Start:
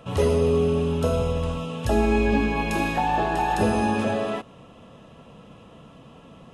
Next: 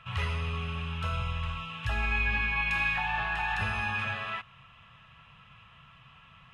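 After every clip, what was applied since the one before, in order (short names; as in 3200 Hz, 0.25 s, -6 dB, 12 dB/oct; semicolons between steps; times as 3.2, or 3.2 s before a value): EQ curve 130 Hz 0 dB, 280 Hz -23 dB, 520 Hz -19 dB, 1200 Hz +5 dB, 2400 Hz +10 dB, 6100 Hz -8 dB, 11000 Hz -13 dB; gain -5.5 dB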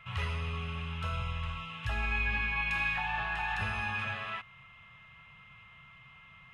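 whine 2100 Hz -52 dBFS; gain -3 dB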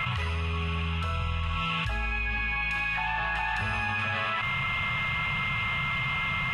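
fast leveller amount 100%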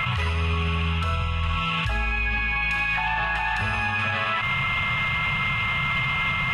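limiter -23 dBFS, peak gain reduction 5 dB; gain +7 dB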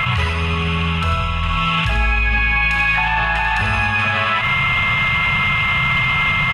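echo 92 ms -8.5 dB; gain +6.5 dB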